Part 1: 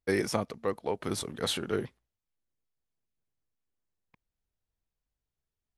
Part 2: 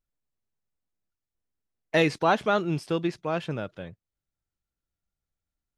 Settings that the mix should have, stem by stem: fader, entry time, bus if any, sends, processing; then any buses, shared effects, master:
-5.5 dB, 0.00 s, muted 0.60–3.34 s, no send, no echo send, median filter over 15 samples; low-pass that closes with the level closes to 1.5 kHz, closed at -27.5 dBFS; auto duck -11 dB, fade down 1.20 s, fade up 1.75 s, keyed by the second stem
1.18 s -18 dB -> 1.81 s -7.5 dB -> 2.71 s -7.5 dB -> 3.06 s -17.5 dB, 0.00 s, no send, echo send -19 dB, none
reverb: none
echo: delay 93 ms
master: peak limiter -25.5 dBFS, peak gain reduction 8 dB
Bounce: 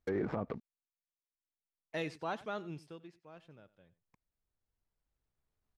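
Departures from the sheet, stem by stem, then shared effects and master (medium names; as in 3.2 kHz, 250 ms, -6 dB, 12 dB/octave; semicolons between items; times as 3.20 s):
stem 1 -5.5 dB -> +5.0 dB; stem 2 -18.0 dB -> -26.5 dB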